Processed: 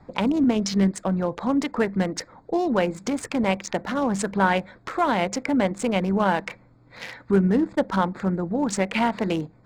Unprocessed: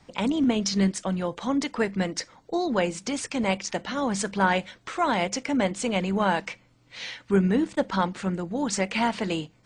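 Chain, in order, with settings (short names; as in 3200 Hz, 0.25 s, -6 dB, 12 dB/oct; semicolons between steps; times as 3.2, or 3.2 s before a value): Wiener smoothing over 15 samples; in parallel at +1.5 dB: compressor, threshold -31 dBFS, peak gain reduction 14 dB; on the sum: dynamic EQ 5800 Hz, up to -5 dB, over -43 dBFS, Q 1.5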